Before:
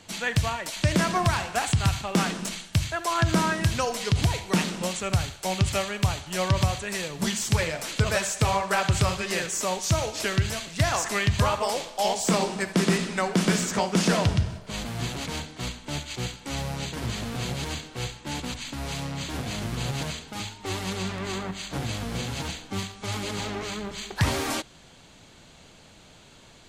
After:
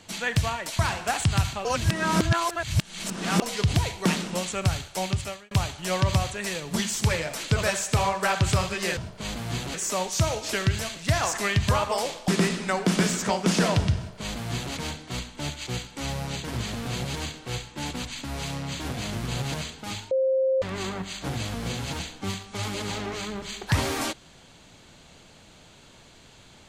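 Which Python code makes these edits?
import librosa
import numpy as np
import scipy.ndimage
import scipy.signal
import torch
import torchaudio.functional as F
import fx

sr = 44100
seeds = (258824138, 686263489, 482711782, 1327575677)

y = fx.edit(x, sr, fx.cut(start_s=0.79, length_s=0.48),
    fx.reverse_span(start_s=2.13, length_s=1.77),
    fx.fade_out_span(start_s=5.44, length_s=0.55),
    fx.cut(start_s=11.99, length_s=0.78),
    fx.duplicate(start_s=14.46, length_s=0.77, to_s=9.45),
    fx.bleep(start_s=20.6, length_s=0.51, hz=528.0, db=-19.5), tone=tone)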